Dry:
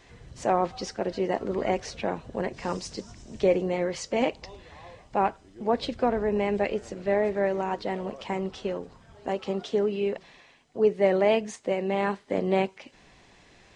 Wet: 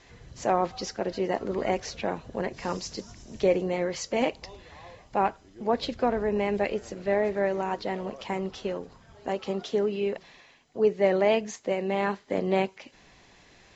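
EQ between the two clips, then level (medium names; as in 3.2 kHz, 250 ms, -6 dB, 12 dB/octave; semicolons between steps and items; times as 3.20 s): Chebyshev low-pass 7.5 kHz, order 8; treble shelf 4.8 kHz +4 dB; 0.0 dB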